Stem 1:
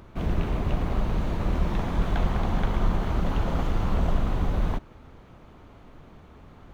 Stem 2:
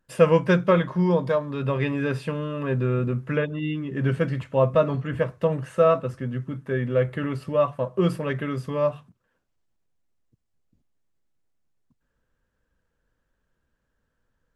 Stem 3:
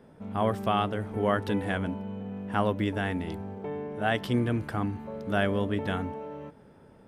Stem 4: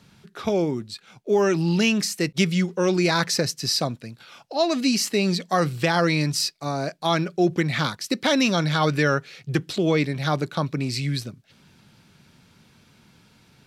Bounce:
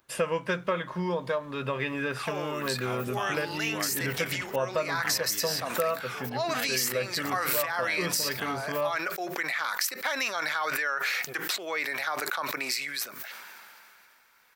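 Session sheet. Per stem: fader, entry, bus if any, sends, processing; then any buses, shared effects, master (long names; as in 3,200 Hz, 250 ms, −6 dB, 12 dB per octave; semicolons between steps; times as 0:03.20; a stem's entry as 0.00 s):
−18.0 dB, 0.00 s, no send, downward compressor, threshold −29 dBFS, peak gain reduction 12.5 dB
+2.0 dB, 0.00 s, no send, high-shelf EQ 3,600 Hz −10 dB
−6.0 dB, 2.50 s, no send, no processing
−1.0 dB, 1.80 s, no send, high-pass filter 720 Hz 12 dB per octave; flat-topped bell 5,600 Hz −15.5 dB 2.4 octaves; level that may fall only so fast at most 21 dB per second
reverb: not used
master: spectral tilt +4 dB per octave; downward compressor 3 to 1, threshold −27 dBFS, peak gain reduction 11 dB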